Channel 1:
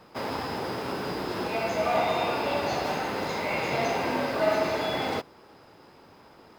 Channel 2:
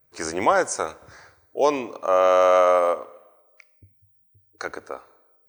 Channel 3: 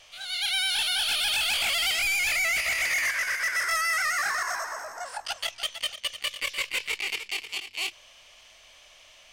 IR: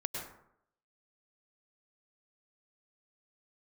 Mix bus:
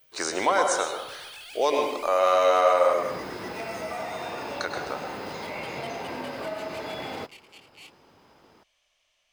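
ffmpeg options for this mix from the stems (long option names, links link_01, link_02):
-filter_complex "[0:a]adelay=2050,volume=-4.5dB[link_01];[1:a]highpass=frequency=400:poles=1,equalizer=frequency=3800:width_type=o:width=0.35:gain=11,volume=-1dB,asplit=2[link_02][link_03];[link_03]volume=-4.5dB[link_04];[2:a]volume=-18dB[link_05];[link_01][link_02]amix=inputs=2:normalize=0,acompressor=threshold=-30dB:ratio=6,volume=0dB[link_06];[3:a]atrim=start_sample=2205[link_07];[link_04][link_07]afir=irnorm=-1:irlink=0[link_08];[link_05][link_06][link_08]amix=inputs=3:normalize=0"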